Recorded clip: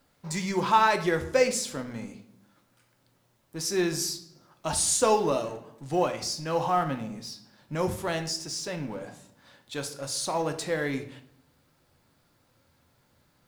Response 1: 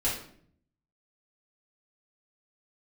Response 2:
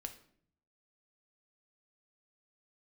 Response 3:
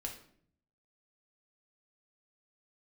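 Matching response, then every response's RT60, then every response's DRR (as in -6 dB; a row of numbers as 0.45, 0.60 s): 2; 0.60, 0.60, 0.60 s; -8.5, 6.0, 0.5 dB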